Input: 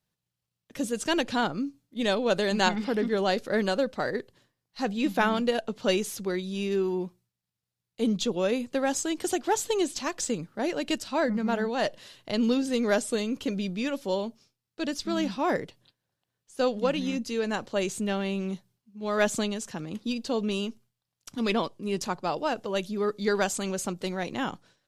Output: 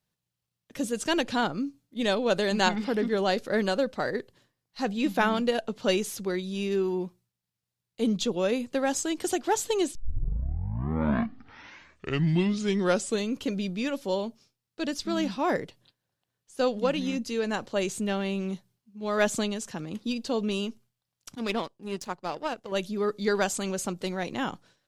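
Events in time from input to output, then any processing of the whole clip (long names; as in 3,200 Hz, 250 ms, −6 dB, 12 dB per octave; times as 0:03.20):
0:09.95: tape start 3.35 s
0:21.35–0:22.72: power curve on the samples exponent 1.4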